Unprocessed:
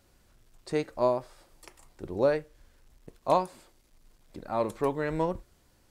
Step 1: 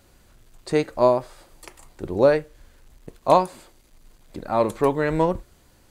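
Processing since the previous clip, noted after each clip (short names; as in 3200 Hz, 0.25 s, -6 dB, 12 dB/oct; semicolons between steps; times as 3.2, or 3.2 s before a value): notch 5400 Hz, Q 14; gain +8 dB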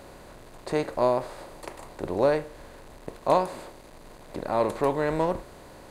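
per-bin compression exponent 0.6; gain -7.5 dB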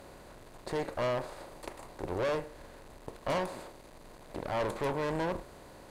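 overloaded stage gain 21 dB; tube stage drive 27 dB, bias 0.75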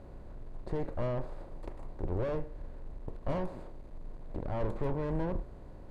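tilt -4 dB/oct; gain -7 dB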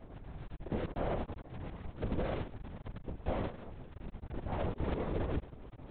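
cycle switcher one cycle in 2, muted; LPC vocoder at 8 kHz whisper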